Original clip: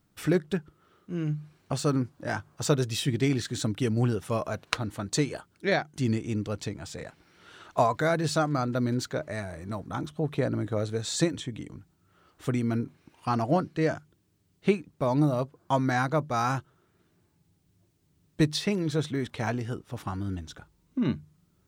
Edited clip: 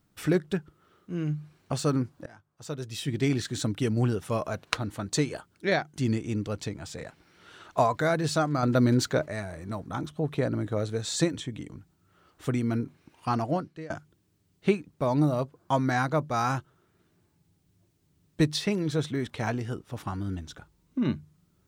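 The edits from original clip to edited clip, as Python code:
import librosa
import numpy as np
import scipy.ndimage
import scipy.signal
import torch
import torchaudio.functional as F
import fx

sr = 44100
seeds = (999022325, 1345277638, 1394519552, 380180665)

y = fx.edit(x, sr, fx.fade_in_from(start_s=2.26, length_s=1.02, curve='qua', floor_db=-22.0),
    fx.clip_gain(start_s=8.63, length_s=0.63, db=5.5),
    fx.fade_out_to(start_s=13.33, length_s=0.57, floor_db=-22.0), tone=tone)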